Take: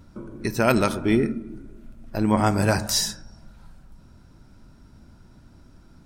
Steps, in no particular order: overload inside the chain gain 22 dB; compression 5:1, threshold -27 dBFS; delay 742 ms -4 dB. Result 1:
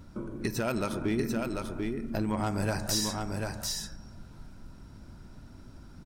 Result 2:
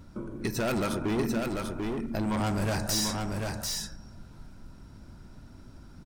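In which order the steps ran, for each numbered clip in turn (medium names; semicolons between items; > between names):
compression > overload inside the chain > delay; overload inside the chain > compression > delay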